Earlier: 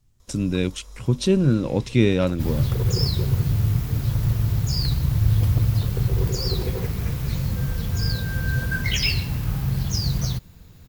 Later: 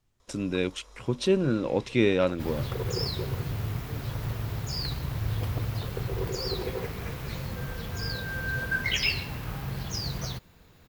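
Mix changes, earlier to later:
first sound: add low-pass 10 kHz; master: add tone controls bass -12 dB, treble -8 dB

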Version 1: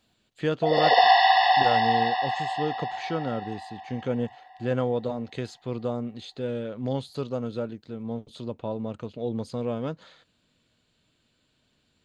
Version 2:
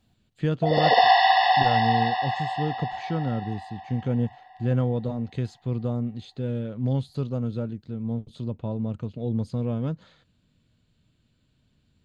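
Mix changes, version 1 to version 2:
speech -4.5 dB; master: add tone controls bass +14 dB, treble -1 dB

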